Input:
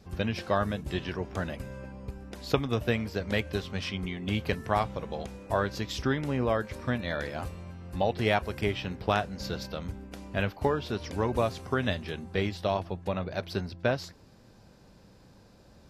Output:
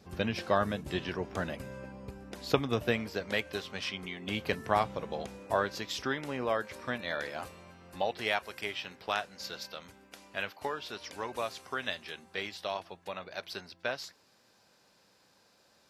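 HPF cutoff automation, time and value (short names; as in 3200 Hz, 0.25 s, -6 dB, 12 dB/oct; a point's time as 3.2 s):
HPF 6 dB/oct
2.74 s 170 Hz
3.39 s 550 Hz
4.14 s 550 Hz
4.64 s 210 Hz
5.34 s 210 Hz
5.88 s 590 Hz
7.88 s 590 Hz
8.4 s 1400 Hz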